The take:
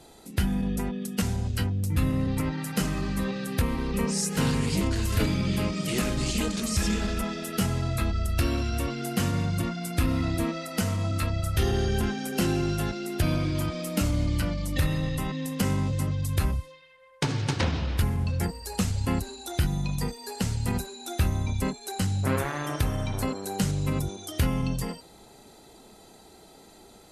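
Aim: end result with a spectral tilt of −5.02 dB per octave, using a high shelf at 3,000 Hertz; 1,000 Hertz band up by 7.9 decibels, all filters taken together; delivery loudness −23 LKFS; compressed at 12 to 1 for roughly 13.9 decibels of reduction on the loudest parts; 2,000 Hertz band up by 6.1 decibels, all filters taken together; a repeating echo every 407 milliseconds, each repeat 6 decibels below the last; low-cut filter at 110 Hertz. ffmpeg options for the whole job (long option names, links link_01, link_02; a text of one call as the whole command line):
ffmpeg -i in.wav -af "highpass=110,equalizer=frequency=1000:width_type=o:gain=9,equalizer=frequency=2000:width_type=o:gain=8,highshelf=frequency=3000:gain=-8.5,acompressor=threshold=-34dB:ratio=12,aecho=1:1:407|814|1221|1628|2035|2442:0.501|0.251|0.125|0.0626|0.0313|0.0157,volume=14dB" out.wav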